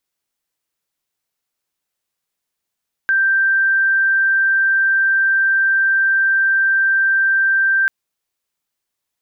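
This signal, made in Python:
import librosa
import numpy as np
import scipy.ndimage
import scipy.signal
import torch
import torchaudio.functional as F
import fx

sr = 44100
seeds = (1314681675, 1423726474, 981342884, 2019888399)

y = 10.0 ** (-12.0 / 20.0) * np.sin(2.0 * np.pi * (1570.0 * (np.arange(round(4.79 * sr)) / sr)))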